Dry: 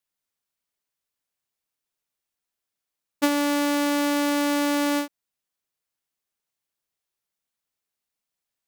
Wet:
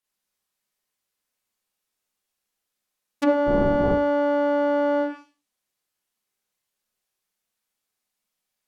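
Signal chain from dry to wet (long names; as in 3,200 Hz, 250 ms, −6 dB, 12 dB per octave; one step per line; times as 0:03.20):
0:03.46–0:03.88: wind on the microphone 320 Hz −20 dBFS
four-comb reverb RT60 0.34 s, combs from 30 ms, DRR −5 dB
treble cut that deepens with the level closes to 1,100 Hz, closed at −17.5 dBFS
level −1.5 dB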